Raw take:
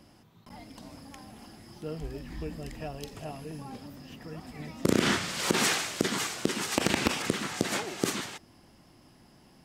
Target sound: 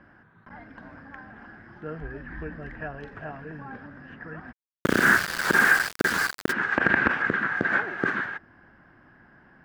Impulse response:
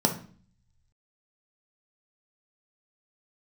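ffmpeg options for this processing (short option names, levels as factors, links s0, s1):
-filter_complex "[0:a]lowpass=f=1600:t=q:w=10,asplit=3[s0][s1][s2];[s0]afade=t=out:st=4.51:d=0.02[s3];[s1]aeval=exprs='val(0)*gte(abs(val(0)),0.0562)':c=same,afade=t=in:st=4.51:d=0.02,afade=t=out:st=6.51:d=0.02[s4];[s2]afade=t=in:st=6.51:d=0.02[s5];[s3][s4][s5]amix=inputs=3:normalize=0"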